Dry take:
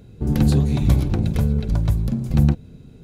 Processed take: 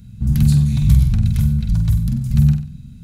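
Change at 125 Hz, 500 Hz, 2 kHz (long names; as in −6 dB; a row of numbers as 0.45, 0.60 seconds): +4.5 dB, below −15 dB, can't be measured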